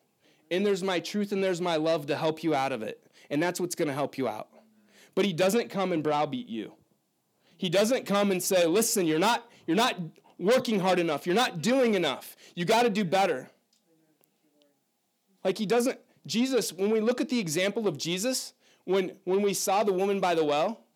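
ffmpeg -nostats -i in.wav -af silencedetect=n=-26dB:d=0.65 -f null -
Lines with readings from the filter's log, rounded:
silence_start: 4.40
silence_end: 5.17 | silence_duration: 0.77
silence_start: 6.60
silence_end: 7.63 | silence_duration: 1.03
silence_start: 13.36
silence_end: 15.45 | silence_duration: 2.09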